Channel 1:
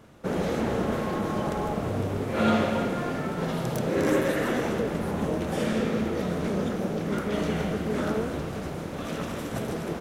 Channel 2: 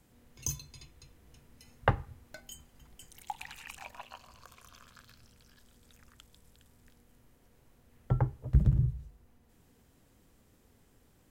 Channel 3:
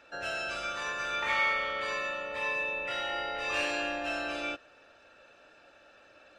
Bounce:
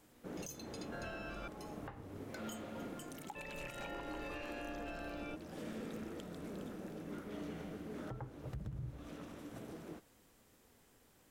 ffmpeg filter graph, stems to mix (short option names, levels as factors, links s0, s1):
-filter_complex "[0:a]equalizer=f=300:t=o:w=0.28:g=8.5,asoftclip=type=hard:threshold=0.126,volume=0.106[s0];[1:a]lowshelf=f=220:g=-11,volume=1.19[s1];[2:a]aemphasis=mode=reproduction:type=riaa,adelay=800,volume=0.447,asplit=3[s2][s3][s4];[s2]atrim=end=1.48,asetpts=PTS-STARTPTS,afade=t=out:st=1.476:d=0.004:c=hsin[s5];[s3]atrim=start=1.48:end=3.35,asetpts=PTS-STARTPTS,volume=0[s6];[s4]atrim=start=3.35,asetpts=PTS-STARTPTS,afade=t=in:d=0.004:c=hsin[s7];[s5][s6][s7]concat=n=3:v=0:a=1[s8];[s0][s1][s8]amix=inputs=3:normalize=0,alimiter=level_in=3.55:limit=0.0631:level=0:latency=1:release=317,volume=0.282"